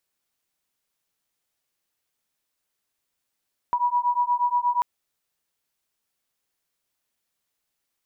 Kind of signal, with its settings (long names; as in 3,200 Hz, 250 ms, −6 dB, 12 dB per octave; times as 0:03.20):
two tones that beat 968 Hz, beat 8.4 Hz, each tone −23 dBFS 1.09 s